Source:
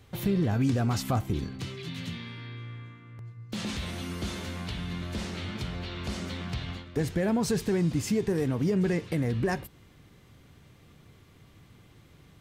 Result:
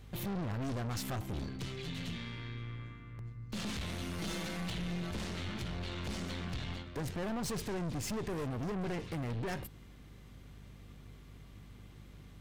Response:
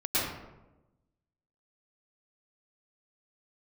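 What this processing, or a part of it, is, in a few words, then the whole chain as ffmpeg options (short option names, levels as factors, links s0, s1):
valve amplifier with mains hum: -filter_complex "[0:a]asettb=1/sr,asplit=3[s0][s1][s2];[s0]atrim=end=4.184[s3];[s1]atrim=start=4.18:end=5.11,asetpts=PTS-STARTPTS,afade=t=in:d=0.004:c=qsin,afade=t=out:st=0.926:d=0.004:c=qsin,aecho=1:1:6.1:1,atrim=end_sample=41013[s4];[s2]atrim=start=5.106[s5];[s3][s4]acrossfade=d=0.004:c1=hsin:c2=qsin[s6];[s6][s5]acrossfade=d=0.004:c1=qsin:c2=hsin,aeval=exprs='(tanh(56.2*val(0)+0.45)-tanh(0.45))/56.2':c=same,aeval=exprs='val(0)+0.00224*(sin(2*PI*50*n/s)+sin(2*PI*2*50*n/s)/2+sin(2*PI*3*50*n/s)/3+sin(2*PI*4*50*n/s)/4+sin(2*PI*5*50*n/s)/5)':c=same"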